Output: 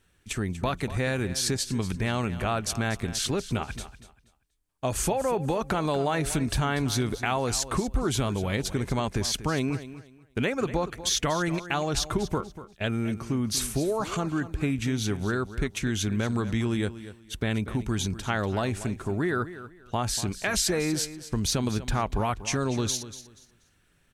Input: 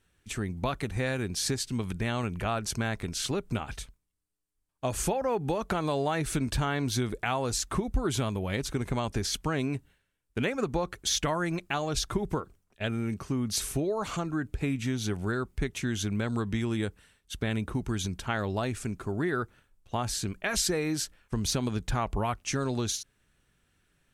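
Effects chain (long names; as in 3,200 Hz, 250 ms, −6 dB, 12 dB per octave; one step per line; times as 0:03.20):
in parallel at −2.5 dB: output level in coarse steps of 18 dB
on the sum: repeating echo 240 ms, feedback 24%, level −14 dB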